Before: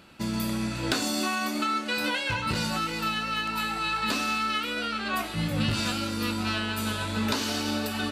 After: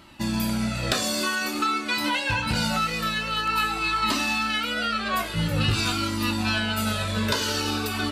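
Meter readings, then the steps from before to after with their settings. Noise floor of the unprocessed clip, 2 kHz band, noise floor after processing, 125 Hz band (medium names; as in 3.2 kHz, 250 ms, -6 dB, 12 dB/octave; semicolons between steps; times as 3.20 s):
-34 dBFS, +3.5 dB, -30 dBFS, +4.5 dB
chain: Shepard-style flanger falling 0.49 Hz; trim +8 dB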